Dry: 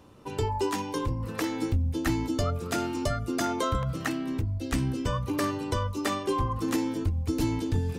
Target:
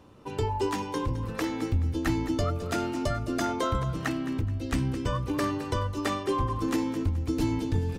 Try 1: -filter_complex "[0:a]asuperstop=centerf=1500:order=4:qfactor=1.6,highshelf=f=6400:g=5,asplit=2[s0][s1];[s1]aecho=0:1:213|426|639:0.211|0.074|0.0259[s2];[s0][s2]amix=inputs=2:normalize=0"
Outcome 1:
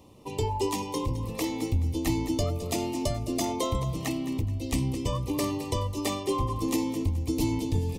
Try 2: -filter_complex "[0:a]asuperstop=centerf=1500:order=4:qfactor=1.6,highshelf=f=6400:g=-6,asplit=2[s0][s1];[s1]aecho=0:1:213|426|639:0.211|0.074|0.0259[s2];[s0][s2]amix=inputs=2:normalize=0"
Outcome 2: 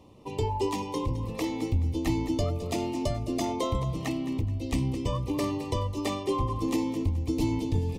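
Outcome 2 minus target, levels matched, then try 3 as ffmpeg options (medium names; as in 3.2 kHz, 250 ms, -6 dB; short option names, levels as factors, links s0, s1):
2 kHz band -5.5 dB
-filter_complex "[0:a]highshelf=f=6400:g=-6,asplit=2[s0][s1];[s1]aecho=0:1:213|426|639:0.211|0.074|0.0259[s2];[s0][s2]amix=inputs=2:normalize=0"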